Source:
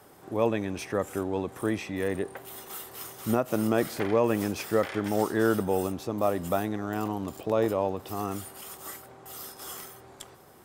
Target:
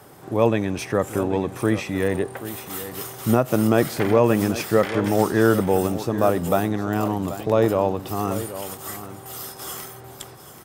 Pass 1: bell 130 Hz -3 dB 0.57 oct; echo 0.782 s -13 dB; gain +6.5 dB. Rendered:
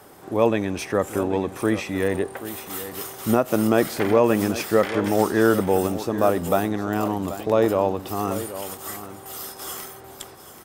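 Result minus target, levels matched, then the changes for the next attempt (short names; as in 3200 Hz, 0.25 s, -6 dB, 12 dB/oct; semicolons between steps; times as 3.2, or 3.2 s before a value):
125 Hz band -4.0 dB
change: bell 130 Hz +7 dB 0.57 oct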